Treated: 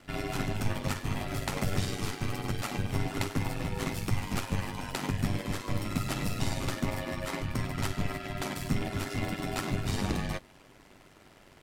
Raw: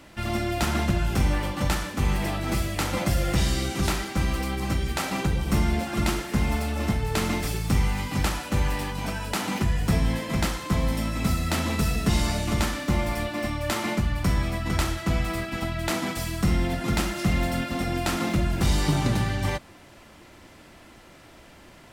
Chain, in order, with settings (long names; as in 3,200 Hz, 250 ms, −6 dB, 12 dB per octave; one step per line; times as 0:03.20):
loose part that buzzes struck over −25 dBFS, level −30 dBFS
ring modulation 51 Hz
time stretch by overlap-add 0.53×, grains 102 ms
level −2.5 dB